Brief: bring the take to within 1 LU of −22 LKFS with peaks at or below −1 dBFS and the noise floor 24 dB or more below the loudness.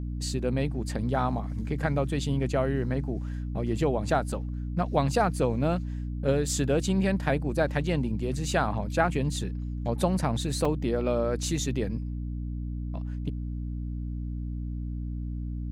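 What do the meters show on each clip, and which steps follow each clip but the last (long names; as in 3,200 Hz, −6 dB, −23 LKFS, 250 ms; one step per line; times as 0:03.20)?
number of dropouts 1; longest dropout 3.6 ms; mains hum 60 Hz; hum harmonics up to 300 Hz; level of the hum −30 dBFS; integrated loudness −29.0 LKFS; sample peak −10.0 dBFS; target loudness −22.0 LKFS
→ repair the gap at 0:10.65, 3.6 ms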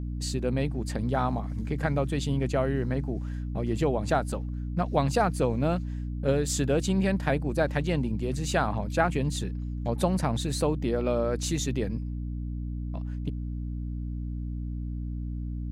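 number of dropouts 0; mains hum 60 Hz; hum harmonics up to 300 Hz; level of the hum −30 dBFS
→ hum removal 60 Hz, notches 5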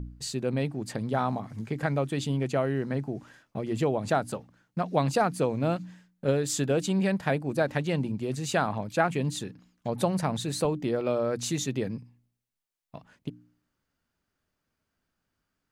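mains hum none found; integrated loudness −29.0 LKFS; sample peak −10.0 dBFS; target loudness −22.0 LKFS
→ level +7 dB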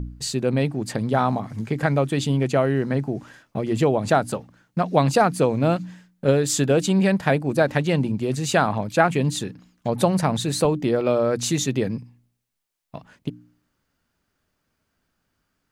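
integrated loudness −22.0 LKFS; sample peak −3.0 dBFS; background noise floor −75 dBFS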